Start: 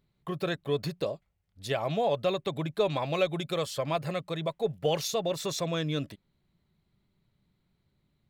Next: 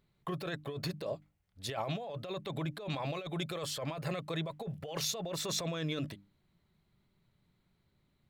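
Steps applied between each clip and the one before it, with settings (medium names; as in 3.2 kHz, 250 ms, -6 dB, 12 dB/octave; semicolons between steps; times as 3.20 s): peaking EQ 1.4 kHz +2.5 dB 2.1 oct; hum notches 50/100/150/200/250/300 Hz; compressor with a negative ratio -33 dBFS, ratio -1; trim -4 dB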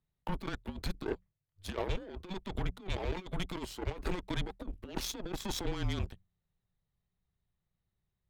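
tilt shelf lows +3 dB, about 1.1 kHz; Chebyshev shaper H 7 -19 dB, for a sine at -22 dBFS; frequency shift -190 Hz; trim +1 dB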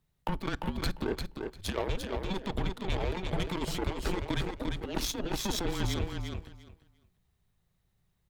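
compression 2.5:1, threshold -39 dBFS, peak gain reduction 7.5 dB; feedback delay 348 ms, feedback 17%, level -5 dB; on a send at -23.5 dB: reverberation RT60 0.55 s, pre-delay 7 ms; on the sum: trim +8.5 dB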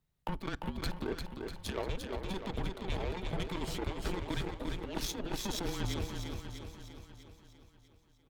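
feedback delay 646 ms, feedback 35%, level -10 dB; trim -4.5 dB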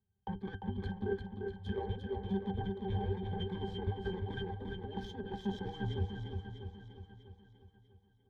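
pitch-class resonator G, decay 0.12 s; trim +9 dB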